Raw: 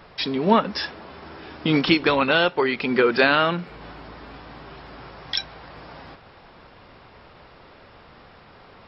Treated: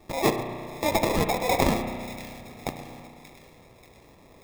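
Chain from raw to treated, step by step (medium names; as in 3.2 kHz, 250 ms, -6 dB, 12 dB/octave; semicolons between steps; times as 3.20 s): local Wiener filter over 15 samples; speed mistake 7.5 ips tape played at 15 ips; sample-rate reducer 1.5 kHz, jitter 0%; two-band feedback delay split 1.6 kHz, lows 124 ms, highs 584 ms, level -15 dB; spring tank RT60 2.2 s, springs 33 ms, chirp 60 ms, DRR 7 dB; trim -4.5 dB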